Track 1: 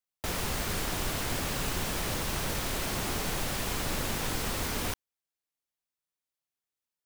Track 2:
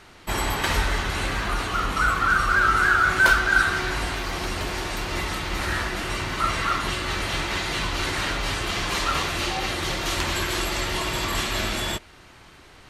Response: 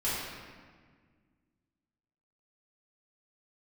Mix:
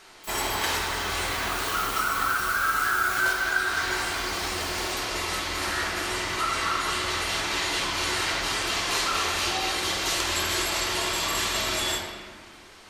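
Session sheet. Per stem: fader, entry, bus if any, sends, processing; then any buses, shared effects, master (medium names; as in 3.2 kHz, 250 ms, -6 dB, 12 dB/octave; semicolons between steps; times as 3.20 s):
1.19 s -9 dB -> 1.72 s -1.5 dB -> 3.14 s -1.5 dB -> 3.69 s -13 dB, 0.00 s, no send, differentiator
-6.0 dB, 0.00 s, send -4.5 dB, treble shelf 5.7 kHz -7 dB; compression, threshold -22 dBFS, peak gain reduction 9 dB; tone controls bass -12 dB, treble +11 dB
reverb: on, RT60 1.6 s, pre-delay 3 ms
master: none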